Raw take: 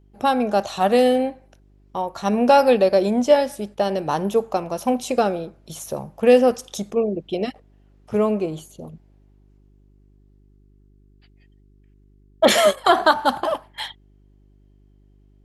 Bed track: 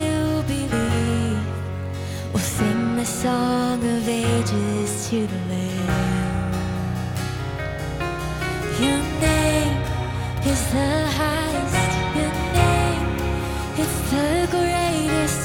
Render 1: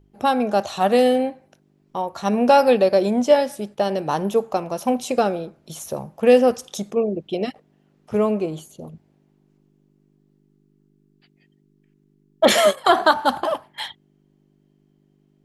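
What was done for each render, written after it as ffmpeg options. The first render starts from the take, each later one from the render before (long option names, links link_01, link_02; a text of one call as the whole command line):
ffmpeg -i in.wav -af "bandreject=frequency=50:width_type=h:width=4,bandreject=frequency=100:width_type=h:width=4" out.wav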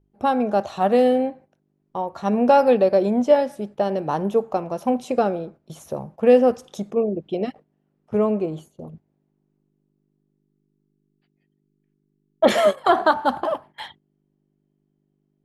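ffmpeg -i in.wav -af "agate=range=-9dB:threshold=-42dB:ratio=16:detection=peak,highshelf=frequency=2500:gain=-12" out.wav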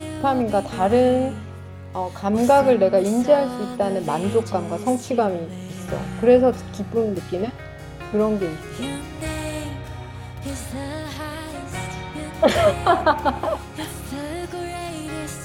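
ffmpeg -i in.wav -i bed.wav -filter_complex "[1:a]volume=-9.5dB[link_01];[0:a][link_01]amix=inputs=2:normalize=0" out.wav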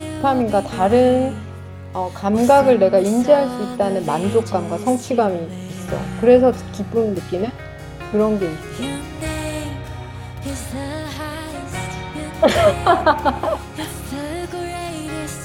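ffmpeg -i in.wav -af "volume=3dB,alimiter=limit=-2dB:level=0:latency=1" out.wav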